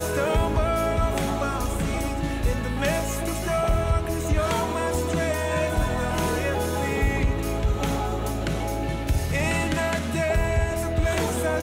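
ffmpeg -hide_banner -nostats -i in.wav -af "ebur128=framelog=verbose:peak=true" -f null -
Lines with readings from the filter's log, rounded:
Integrated loudness:
  I:         -25.2 LUFS
  Threshold: -35.1 LUFS
Loudness range:
  LRA:         1.0 LU
  Threshold: -45.3 LUFS
  LRA low:   -25.8 LUFS
  LRA high:  -24.8 LUFS
True peak:
  Peak:      -13.2 dBFS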